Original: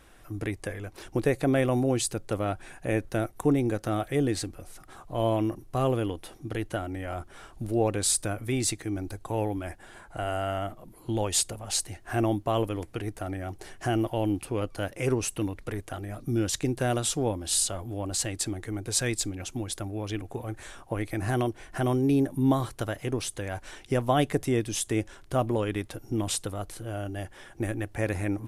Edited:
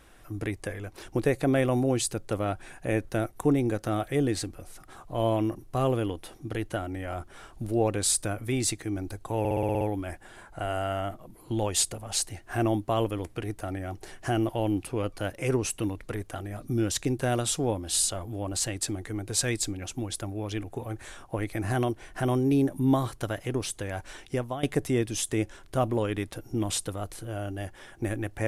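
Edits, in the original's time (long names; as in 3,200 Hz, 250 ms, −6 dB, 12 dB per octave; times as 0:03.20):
0:09.39: stutter 0.06 s, 8 plays
0:23.81–0:24.21: fade out, to −17.5 dB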